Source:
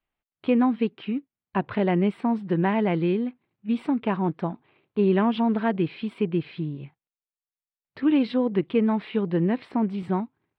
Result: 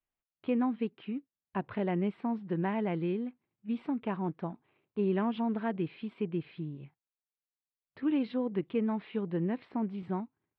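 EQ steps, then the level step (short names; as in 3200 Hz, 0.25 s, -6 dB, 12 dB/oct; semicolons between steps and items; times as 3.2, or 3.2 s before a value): air absorption 130 m; -8.5 dB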